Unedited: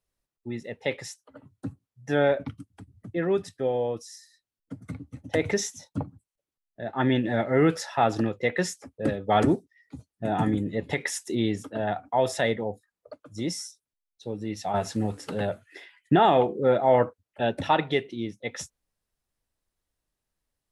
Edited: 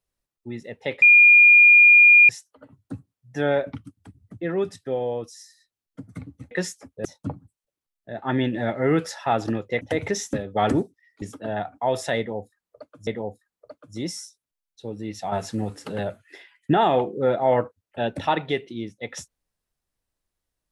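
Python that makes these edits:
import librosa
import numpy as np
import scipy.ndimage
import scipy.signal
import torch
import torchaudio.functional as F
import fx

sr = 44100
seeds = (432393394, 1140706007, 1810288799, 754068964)

y = fx.edit(x, sr, fx.insert_tone(at_s=1.02, length_s=1.27, hz=2420.0, db=-8.5),
    fx.swap(start_s=5.24, length_s=0.52, other_s=8.52, other_length_s=0.54),
    fx.cut(start_s=9.95, length_s=1.58),
    fx.repeat(start_s=12.49, length_s=0.89, count=2), tone=tone)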